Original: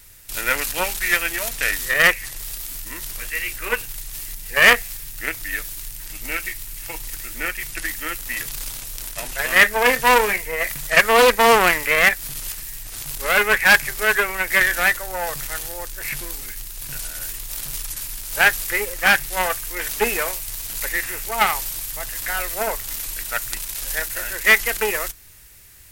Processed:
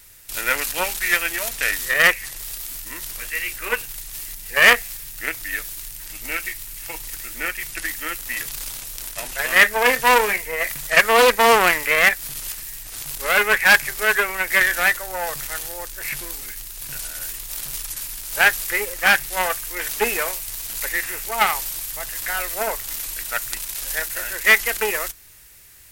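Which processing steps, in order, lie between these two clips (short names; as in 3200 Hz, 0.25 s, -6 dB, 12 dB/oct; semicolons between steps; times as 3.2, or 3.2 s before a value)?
low shelf 210 Hz -5.5 dB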